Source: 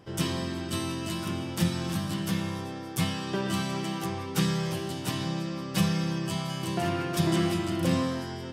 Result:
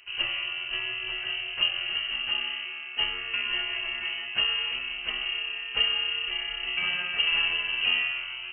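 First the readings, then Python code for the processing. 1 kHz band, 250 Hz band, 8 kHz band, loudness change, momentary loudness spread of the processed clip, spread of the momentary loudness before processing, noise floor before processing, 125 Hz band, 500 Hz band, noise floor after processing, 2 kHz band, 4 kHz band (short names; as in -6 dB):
-7.0 dB, -26.0 dB, under -40 dB, +3.0 dB, 6 LU, 6 LU, -37 dBFS, under -25 dB, -14.0 dB, -38 dBFS, +11.0 dB, +11.0 dB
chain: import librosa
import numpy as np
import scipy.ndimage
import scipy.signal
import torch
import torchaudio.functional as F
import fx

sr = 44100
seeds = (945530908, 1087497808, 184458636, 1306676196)

y = fx.freq_invert(x, sr, carrier_hz=3000)
y = fx.low_shelf(y, sr, hz=410.0, db=-6.0)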